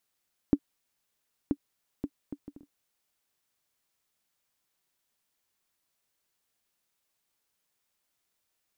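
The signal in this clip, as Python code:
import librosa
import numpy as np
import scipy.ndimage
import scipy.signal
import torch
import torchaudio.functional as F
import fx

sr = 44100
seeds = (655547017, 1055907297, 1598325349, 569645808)

y = fx.bouncing_ball(sr, first_gap_s=0.98, ratio=0.54, hz=286.0, decay_ms=59.0, level_db=-10.5)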